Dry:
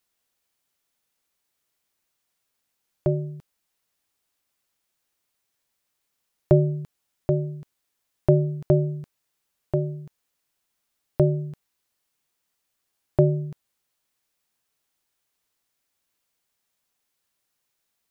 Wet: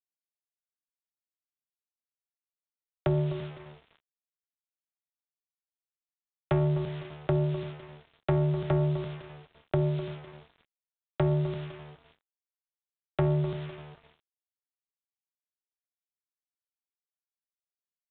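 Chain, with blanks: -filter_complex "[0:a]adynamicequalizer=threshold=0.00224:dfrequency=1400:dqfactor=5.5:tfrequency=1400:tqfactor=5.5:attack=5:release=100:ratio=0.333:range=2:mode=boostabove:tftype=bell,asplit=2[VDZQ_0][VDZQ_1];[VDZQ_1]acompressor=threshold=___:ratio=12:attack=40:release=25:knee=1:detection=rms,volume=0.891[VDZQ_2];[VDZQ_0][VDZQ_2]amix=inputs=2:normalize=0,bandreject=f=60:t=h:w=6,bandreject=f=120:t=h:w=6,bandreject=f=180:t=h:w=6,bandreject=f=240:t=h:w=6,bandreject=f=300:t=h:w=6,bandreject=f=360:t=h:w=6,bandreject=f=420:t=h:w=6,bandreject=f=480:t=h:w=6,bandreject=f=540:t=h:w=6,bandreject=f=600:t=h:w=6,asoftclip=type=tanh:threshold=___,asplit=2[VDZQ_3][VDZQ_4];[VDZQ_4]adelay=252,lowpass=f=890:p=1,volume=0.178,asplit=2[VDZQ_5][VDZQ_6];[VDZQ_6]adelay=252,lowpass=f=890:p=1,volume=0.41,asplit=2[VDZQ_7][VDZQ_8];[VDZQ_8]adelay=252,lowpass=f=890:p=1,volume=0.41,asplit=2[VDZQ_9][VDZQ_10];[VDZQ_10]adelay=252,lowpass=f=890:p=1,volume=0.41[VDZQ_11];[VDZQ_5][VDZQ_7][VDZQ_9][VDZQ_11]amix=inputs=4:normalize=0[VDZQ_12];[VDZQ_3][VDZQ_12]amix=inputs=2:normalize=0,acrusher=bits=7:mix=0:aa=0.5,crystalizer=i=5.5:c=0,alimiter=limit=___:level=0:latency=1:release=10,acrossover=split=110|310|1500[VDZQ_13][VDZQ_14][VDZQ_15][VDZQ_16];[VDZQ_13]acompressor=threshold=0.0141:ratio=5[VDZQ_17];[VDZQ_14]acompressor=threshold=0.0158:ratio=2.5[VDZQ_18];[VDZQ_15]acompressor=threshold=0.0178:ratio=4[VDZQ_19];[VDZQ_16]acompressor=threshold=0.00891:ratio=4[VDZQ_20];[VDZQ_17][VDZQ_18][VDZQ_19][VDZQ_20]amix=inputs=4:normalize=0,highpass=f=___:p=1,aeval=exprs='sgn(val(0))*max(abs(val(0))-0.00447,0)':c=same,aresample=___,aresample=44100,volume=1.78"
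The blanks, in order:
0.0398, 0.2, 0.178, 56, 8000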